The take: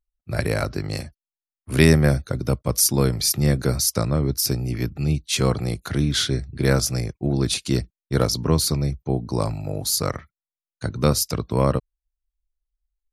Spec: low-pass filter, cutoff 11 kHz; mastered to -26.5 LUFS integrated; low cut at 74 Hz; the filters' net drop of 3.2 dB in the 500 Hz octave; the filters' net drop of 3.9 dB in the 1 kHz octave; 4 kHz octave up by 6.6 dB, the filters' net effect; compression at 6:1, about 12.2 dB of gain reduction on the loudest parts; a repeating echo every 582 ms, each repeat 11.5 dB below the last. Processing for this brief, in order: high-pass 74 Hz; low-pass 11 kHz; peaking EQ 500 Hz -3 dB; peaking EQ 1 kHz -5 dB; peaking EQ 4 kHz +8.5 dB; compression 6:1, threshold -23 dBFS; feedback delay 582 ms, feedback 27%, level -11.5 dB; trim +1 dB

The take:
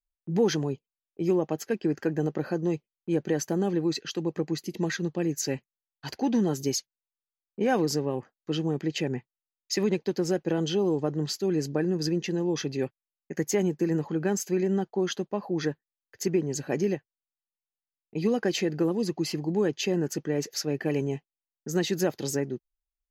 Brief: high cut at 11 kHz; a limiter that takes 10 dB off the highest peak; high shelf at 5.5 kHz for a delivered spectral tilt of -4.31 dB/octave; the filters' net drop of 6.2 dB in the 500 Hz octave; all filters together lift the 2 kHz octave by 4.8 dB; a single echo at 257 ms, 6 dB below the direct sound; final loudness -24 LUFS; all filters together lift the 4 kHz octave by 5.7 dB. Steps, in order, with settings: low-pass 11 kHz; peaking EQ 500 Hz -9 dB; peaking EQ 2 kHz +5 dB; peaking EQ 4 kHz +4 dB; treble shelf 5.5 kHz +5 dB; peak limiter -20.5 dBFS; delay 257 ms -6 dB; trim +7 dB

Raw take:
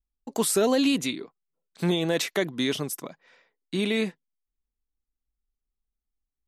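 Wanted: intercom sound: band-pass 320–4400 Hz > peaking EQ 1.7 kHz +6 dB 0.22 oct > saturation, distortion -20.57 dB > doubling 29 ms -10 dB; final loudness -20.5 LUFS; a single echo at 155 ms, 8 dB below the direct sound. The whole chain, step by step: band-pass 320–4400 Hz; peaking EQ 1.7 kHz +6 dB 0.22 oct; delay 155 ms -8 dB; saturation -16 dBFS; doubling 29 ms -10 dB; trim +8 dB

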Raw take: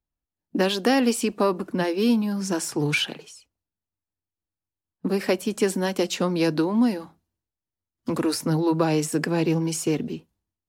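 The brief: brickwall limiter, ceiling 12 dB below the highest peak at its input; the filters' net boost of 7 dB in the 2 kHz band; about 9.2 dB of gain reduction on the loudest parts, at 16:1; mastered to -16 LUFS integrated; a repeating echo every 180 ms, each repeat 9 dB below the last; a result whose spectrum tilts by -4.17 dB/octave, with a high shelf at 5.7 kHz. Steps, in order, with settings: peaking EQ 2 kHz +8 dB; treble shelf 5.7 kHz +5.5 dB; compression 16:1, threshold -23 dBFS; peak limiter -22.5 dBFS; feedback delay 180 ms, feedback 35%, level -9 dB; trim +15 dB

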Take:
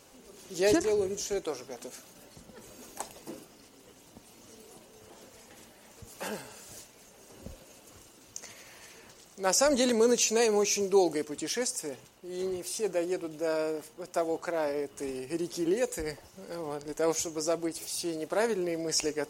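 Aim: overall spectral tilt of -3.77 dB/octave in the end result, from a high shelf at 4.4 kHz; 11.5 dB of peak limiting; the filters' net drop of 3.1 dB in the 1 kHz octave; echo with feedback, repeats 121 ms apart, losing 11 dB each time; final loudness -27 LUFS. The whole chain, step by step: peaking EQ 1 kHz -4 dB; treble shelf 4.4 kHz -8.5 dB; peak limiter -25.5 dBFS; feedback delay 121 ms, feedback 28%, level -11 dB; trim +8.5 dB

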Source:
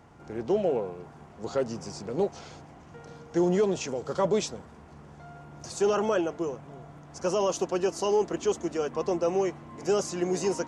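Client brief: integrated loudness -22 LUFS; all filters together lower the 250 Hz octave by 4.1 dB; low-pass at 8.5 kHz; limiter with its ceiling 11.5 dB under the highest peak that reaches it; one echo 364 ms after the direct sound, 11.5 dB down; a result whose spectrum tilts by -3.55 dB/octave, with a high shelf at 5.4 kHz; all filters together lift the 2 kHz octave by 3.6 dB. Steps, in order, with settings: low-pass 8.5 kHz; peaking EQ 250 Hz -7.5 dB; peaking EQ 2 kHz +4 dB; treble shelf 5.4 kHz +7.5 dB; peak limiter -27 dBFS; delay 364 ms -11.5 dB; trim +15 dB

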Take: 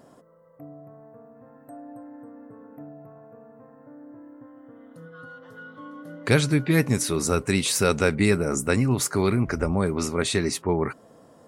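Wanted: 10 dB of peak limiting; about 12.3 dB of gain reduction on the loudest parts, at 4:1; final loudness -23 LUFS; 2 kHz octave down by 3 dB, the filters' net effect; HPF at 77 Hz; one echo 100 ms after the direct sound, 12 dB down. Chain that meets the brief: high-pass 77 Hz; peaking EQ 2 kHz -4 dB; compression 4:1, threshold -31 dBFS; peak limiter -27 dBFS; delay 100 ms -12 dB; trim +16.5 dB

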